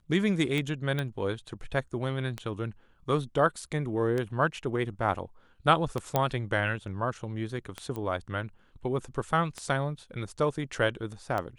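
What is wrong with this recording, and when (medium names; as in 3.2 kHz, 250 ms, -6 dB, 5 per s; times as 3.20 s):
tick 33 1/3 rpm -18 dBFS
0.99 s: pop -18 dBFS
6.16 s: pop -11 dBFS
7.96 s: pop -23 dBFS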